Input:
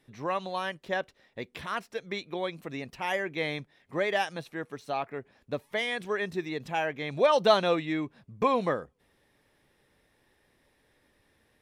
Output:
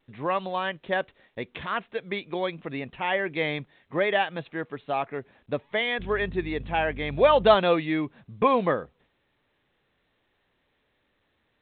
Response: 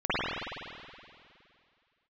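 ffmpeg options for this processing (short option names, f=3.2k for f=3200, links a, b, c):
-filter_complex "[0:a]asettb=1/sr,asplit=3[a][b][c];[a]atrim=end=5.994[d];[b]atrim=start=5.99:end=7.55,asetpts=PTS-STARTPTS,afade=t=in:d=0.004:c=qsin,afade=t=out:st=1.556:d=0.004:c=qsin,aeval=exprs='val(0)+0.00891*(sin(2*PI*50*n/s)+sin(2*PI*2*50*n/s)/2+sin(2*PI*3*50*n/s)/3+sin(2*PI*4*50*n/s)/4+sin(2*PI*5*50*n/s)/5)':c=same[e];[c]atrim=start=7.546[f];[d][e]acrossfade=d=0.004:c1=hsin:c2=qsin[g];[g][f]acrossfade=d=0.004:c1=qsin:c2=hsin,agate=range=-33dB:threshold=-57dB:ratio=3:detection=peak,volume=4dB" -ar 8000 -c:a pcm_alaw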